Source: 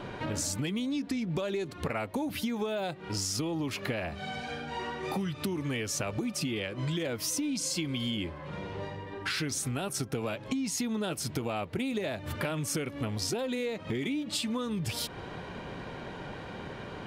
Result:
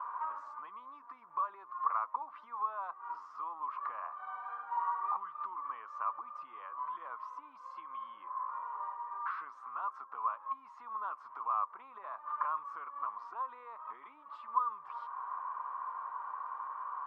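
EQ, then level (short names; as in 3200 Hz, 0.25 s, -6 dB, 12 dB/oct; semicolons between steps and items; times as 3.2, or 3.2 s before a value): Butterworth band-pass 1100 Hz, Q 5.3; +14.0 dB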